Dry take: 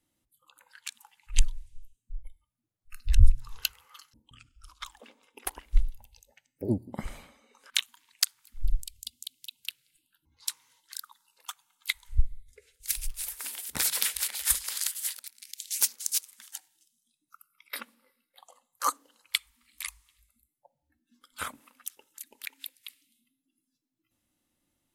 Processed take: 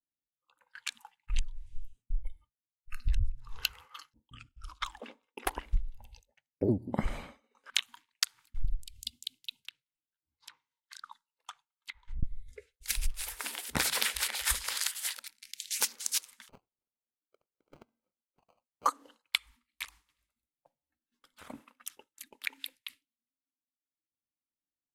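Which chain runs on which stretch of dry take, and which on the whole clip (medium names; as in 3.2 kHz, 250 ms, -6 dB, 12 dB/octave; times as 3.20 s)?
9.58–12.23 s: low-pass that closes with the level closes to 2.2 kHz, closed at -32 dBFS + compression 12:1, threshold -41 dBFS
16.49–18.86 s: treble shelf 4.1 kHz -10 dB + compression, threshold -55 dBFS + sample-rate reducer 1.8 kHz
19.84–21.50 s: compression, threshold -48 dBFS + spectrum-flattening compressor 2:1
whole clip: low-pass 2.5 kHz 6 dB/octave; expander -52 dBFS; compression 16:1, threshold -31 dBFS; trim +7.5 dB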